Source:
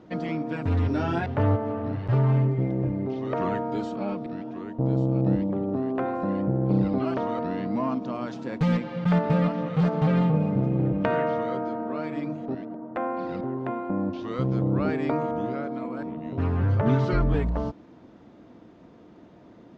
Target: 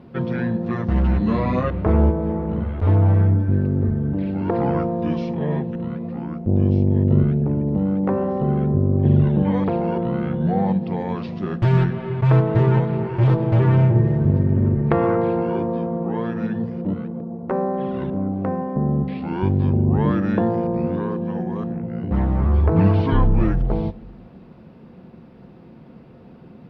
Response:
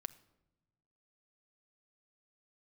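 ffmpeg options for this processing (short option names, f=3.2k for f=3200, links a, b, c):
-filter_complex "[0:a]asetrate=32667,aresample=44100,asplit=2[a][b];[1:a]atrim=start_sample=2205,asetrate=48510,aresample=44100[c];[b][c]afir=irnorm=-1:irlink=0,volume=11dB[d];[a][d]amix=inputs=2:normalize=0,volume=-4dB"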